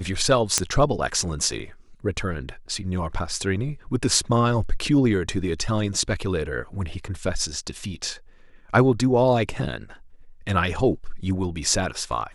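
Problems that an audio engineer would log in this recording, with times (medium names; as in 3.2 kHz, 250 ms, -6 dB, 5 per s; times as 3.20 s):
0.58 s: pop -2 dBFS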